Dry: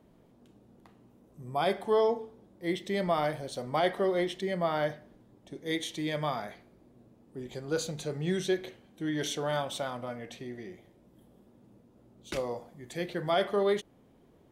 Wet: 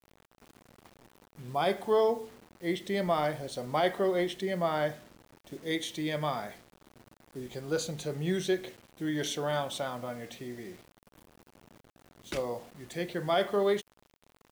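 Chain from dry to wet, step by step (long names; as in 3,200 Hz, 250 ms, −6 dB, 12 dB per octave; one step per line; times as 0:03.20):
bit reduction 9 bits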